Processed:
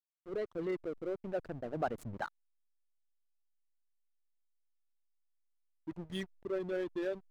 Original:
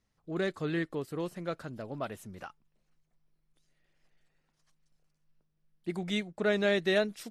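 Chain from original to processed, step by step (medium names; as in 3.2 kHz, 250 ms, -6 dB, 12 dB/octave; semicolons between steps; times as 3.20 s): resonances exaggerated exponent 2; Doppler pass-by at 2.71 s, 33 m/s, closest 17 m; hysteresis with a dead band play -47 dBFS; trim +9.5 dB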